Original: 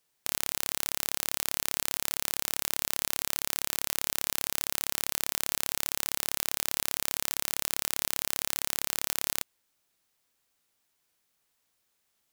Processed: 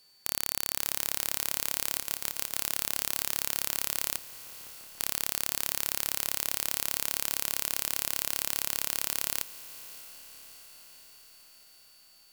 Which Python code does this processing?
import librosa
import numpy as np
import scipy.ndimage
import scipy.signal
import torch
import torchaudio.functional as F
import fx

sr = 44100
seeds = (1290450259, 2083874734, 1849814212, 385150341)

p1 = fx.cvsd(x, sr, bps=64000, at=(4.18, 5.01))
p2 = fx.fold_sine(p1, sr, drive_db=8, ceiling_db=-1.5)
p3 = p1 + F.gain(torch.from_numpy(p2), -5.5).numpy()
p4 = fx.ring_mod(p3, sr, carrier_hz=1200.0, at=(1.99, 2.58))
p5 = p4 + fx.echo_diffused(p4, sr, ms=635, feedback_pct=62, wet_db=-15.5, dry=0)
p6 = p5 + 10.0 ** (-59.0 / 20.0) * np.sin(2.0 * np.pi * 4500.0 * np.arange(len(p5)) / sr)
y = F.gain(torch.from_numpy(p6), -1.0).numpy()